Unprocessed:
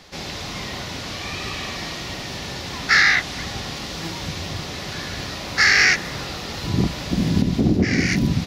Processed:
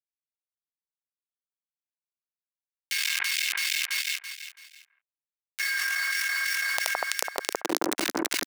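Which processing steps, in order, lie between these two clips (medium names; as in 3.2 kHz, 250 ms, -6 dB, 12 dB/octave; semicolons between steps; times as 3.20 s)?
peaking EQ 99 Hz +14.5 dB 1 oct; band-stop 2.6 kHz, Q 6; de-hum 157.9 Hz, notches 21; in parallel at -2 dB: peak limiter -11.5 dBFS, peak gain reduction 11.5 dB; on the sum: inharmonic resonator 330 Hz, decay 0.26 s, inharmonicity 0.03; bit crusher 4-bit; high-pass sweep 2.5 kHz -> 220 Hz, 5.26–8.22 s; on a send: echo whose repeats swap between lows and highs 166 ms, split 1.6 kHz, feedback 53%, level -3.5 dB; on the sum: level flattener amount 100%; trim -12.5 dB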